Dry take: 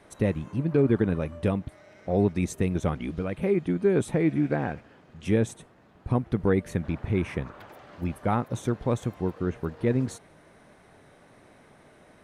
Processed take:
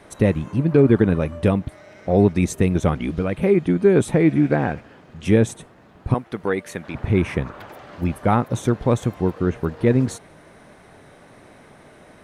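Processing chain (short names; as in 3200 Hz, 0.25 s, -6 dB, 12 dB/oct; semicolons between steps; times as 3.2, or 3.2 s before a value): 6.14–6.95 HPF 750 Hz 6 dB/oct; gain +7.5 dB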